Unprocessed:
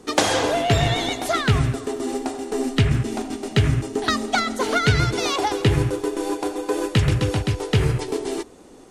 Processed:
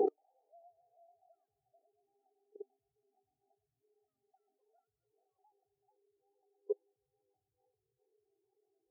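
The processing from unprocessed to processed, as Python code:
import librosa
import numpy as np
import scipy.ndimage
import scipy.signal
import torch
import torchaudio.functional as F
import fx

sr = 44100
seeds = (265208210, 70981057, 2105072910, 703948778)

p1 = fx.recorder_agc(x, sr, target_db=-8.0, rise_db_per_s=7.5, max_gain_db=30)
p2 = fx.small_body(p1, sr, hz=(400.0, 780.0), ring_ms=25, db=8)
p3 = p2 + fx.echo_alternate(p2, sr, ms=440, hz=960.0, feedback_pct=70, wet_db=-4.5, dry=0)
p4 = fx.gate_flip(p3, sr, shuts_db=-15.0, range_db=-35)
p5 = fx.high_shelf(p4, sr, hz=3900.0, db=4.0)
p6 = fx.level_steps(p5, sr, step_db=22)
p7 = fx.peak_eq(p6, sr, hz=670.0, db=12.5, octaves=1.0)
p8 = fx.spectral_expand(p7, sr, expansion=2.5)
y = p8 * librosa.db_to_amplitude(5.5)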